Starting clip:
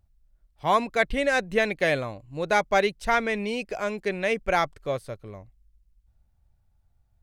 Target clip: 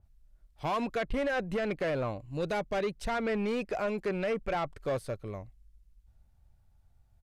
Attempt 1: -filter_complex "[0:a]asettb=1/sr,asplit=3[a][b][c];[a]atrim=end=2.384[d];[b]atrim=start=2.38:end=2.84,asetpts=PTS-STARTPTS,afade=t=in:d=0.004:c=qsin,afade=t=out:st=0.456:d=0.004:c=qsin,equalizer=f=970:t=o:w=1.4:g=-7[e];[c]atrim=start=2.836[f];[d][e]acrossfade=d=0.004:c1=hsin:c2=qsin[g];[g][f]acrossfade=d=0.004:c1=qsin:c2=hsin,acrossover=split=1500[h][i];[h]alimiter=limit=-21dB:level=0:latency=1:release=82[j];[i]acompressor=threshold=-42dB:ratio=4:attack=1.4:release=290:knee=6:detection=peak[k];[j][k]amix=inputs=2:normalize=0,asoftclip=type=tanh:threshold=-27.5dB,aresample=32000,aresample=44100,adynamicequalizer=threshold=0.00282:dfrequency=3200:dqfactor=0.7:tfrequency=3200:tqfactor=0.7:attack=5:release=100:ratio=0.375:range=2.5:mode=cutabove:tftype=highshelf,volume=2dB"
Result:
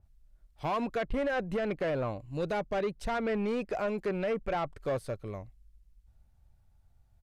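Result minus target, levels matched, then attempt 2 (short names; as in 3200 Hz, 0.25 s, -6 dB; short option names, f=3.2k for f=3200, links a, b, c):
compressor: peak gain reduction +5 dB
-filter_complex "[0:a]asettb=1/sr,asplit=3[a][b][c];[a]atrim=end=2.384[d];[b]atrim=start=2.38:end=2.84,asetpts=PTS-STARTPTS,afade=t=in:d=0.004:c=qsin,afade=t=out:st=0.456:d=0.004:c=qsin,equalizer=f=970:t=o:w=1.4:g=-7[e];[c]atrim=start=2.836[f];[d][e]acrossfade=d=0.004:c1=hsin:c2=qsin[g];[g][f]acrossfade=d=0.004:c1=qsin:c2=hsin,acrossover=split=1500[h][i];[h]alimiter=limit=-21dB:level=0:latency=1:release=82[j];[i]acompressor=threshold=-35.5dB:ratio=4:attack=1.4:release=290:knee=6:detection=peak[k];[j][k]amix=inputs=2:normalize=0,asoftclip=type=tanh:threshold=-27.5dB,aresample=32000,aresample=44100,adynamicequalizer=threshold=0.00282:dfrequency=3200:dqfactor=0.7:tfrequency=3200:tqfactor=0.7:attack=5:release=100:ratio=0.375:range=2.5:mode=cutabove:tftype=highshelf,volume=2dB"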